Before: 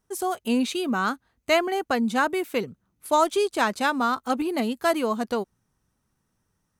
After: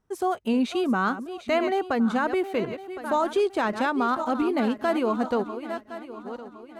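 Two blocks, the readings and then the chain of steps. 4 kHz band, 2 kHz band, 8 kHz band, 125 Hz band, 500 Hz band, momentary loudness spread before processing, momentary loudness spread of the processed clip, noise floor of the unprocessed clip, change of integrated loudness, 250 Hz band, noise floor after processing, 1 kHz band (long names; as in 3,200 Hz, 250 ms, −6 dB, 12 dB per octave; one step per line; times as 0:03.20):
−5.5 dB, −3.0 dB, −10.5 dB, +2.0 dB, 0.0 dB, 7 LU, 11 LU, −75 dBFS, −1.0 dB, +1.5 dB, −48 dBFS, −1.0 dB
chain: feedback delay that plays each chunk backwards 531 ms, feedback 55%, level −12 dB
low-pass filter 1,900 Hz 6 dB per octave
brickwall limiter −17.5 dBFS, peak gain reduction 7 dB
level +2 dB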